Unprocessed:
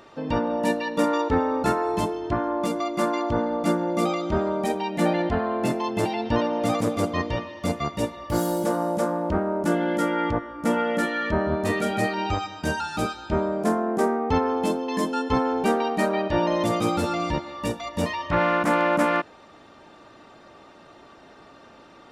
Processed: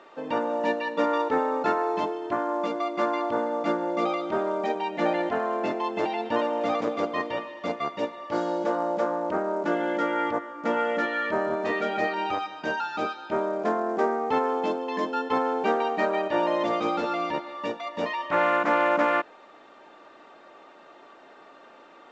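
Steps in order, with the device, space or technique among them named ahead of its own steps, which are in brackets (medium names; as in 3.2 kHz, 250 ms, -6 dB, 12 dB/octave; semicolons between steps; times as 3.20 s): telephone (band-pass 360–3200 Hz; A-law 128 kbps 16 kHz)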